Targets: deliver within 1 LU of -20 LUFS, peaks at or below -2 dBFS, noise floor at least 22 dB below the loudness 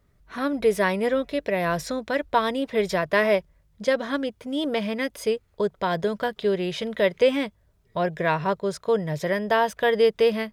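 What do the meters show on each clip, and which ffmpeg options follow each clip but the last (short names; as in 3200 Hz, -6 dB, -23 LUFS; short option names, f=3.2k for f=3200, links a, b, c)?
loudness -24.5 LUFS; peak -8.0 dBFS; loudness target -20.0 LUFS
-> -af "volume=4.5dB"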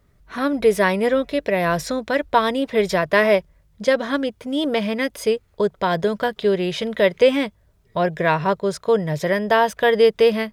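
loudness -20.0 LUFS; peak -3.5 dBFS; noise floor -59 dBFS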